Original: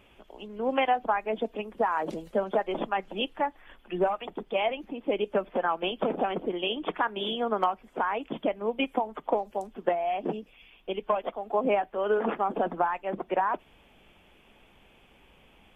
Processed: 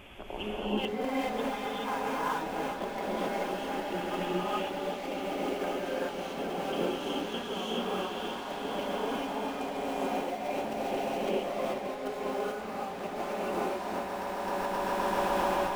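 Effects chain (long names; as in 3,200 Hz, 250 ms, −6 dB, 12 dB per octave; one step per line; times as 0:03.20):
notch filter 480 Hz, Q 12
hum removal 129.4 Hz, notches 3
in parallel at −11 dB: wrap-around overflow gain 23 dB
on the sum: echo that builds up and dies away 132 ms, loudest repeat 5, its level −14 dB
gate pattern "xxxxxx.x..xx." 172 BPM −12 dB
gain into a clipping stage and back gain 31.5 dB
compressor whose output falls as the input rises −40 dBFS, ratio −0.5
reverb whose tail is shaped and stops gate 460 ms rising, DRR −7.5 dB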